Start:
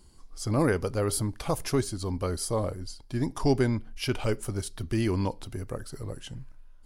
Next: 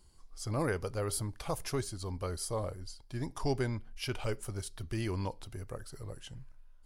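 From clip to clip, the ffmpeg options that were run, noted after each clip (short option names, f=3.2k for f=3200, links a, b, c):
-af "equalizer=f=250:w=1.2:g=-6,volume=-5.5dB"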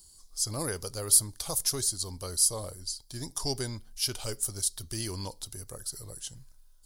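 -af "aexciter=amount=4.8:drive=7.8:freq=3.6k,volume=-2.5dB"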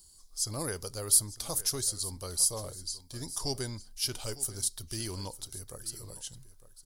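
-af "aecho=1:1:905:0.15,volume=-2dB"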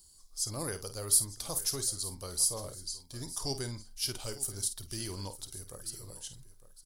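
-filter_complex "[0:a]asplit=2[a][b];[b]adelay=50,volume=-11dB[c];[a][c]amix=inputs=2:normalize=0,volume=-2dB"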